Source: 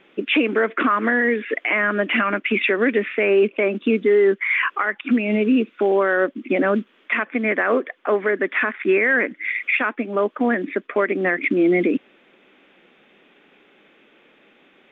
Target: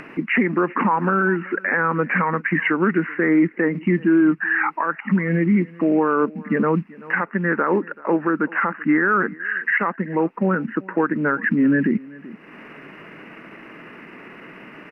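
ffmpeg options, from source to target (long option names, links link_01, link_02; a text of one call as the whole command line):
ffmpeg -i in.wav -af "asetrate=35002,aresample=44100,atempo=1.25992,aecho=1:1:383:0.075,acompressor=mode=upward:threshold=-27dB:ratio=2.5" out.wav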